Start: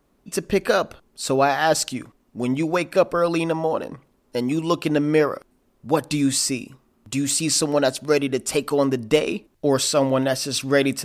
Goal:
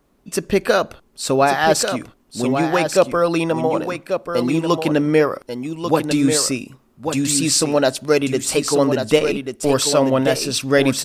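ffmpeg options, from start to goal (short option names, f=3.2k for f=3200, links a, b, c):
-filter_complex "[0:a]asettb=1/sr,asplit=3[a][b][c];[a]atrim=end=9.194[d];[b]atrim=start=9.19:end=9.73,asetpts=PTS-STARTPTS,afade=t=in:d=0.004:c=qsin,afade=t=out:st=0.536:d=0.004:c=qsin,aeval=exprs='if(lt(val(0),0),0.708*val(0),val(0))':c=same[e];[c]atrim=start=9.726[f];[d][e]acrossfade=d=0.004:c1=hsin:c2=qsin[g];[g][f]acrossfade=d=0.004:c1=qsin:c2=hsin,aecho=1:1:1140:0.447,volume=3dB"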